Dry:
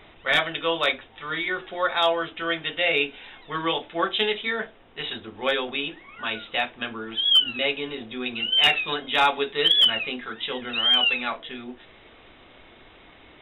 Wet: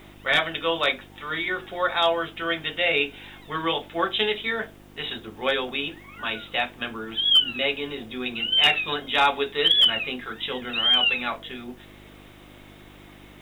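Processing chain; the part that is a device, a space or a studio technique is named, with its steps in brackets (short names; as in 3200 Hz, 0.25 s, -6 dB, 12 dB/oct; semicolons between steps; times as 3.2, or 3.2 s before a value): video cassette with head-switching buzz (buzz 50 Hz, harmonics 7, -50 dBFS -1 dB/oct; white noise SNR 37 dB)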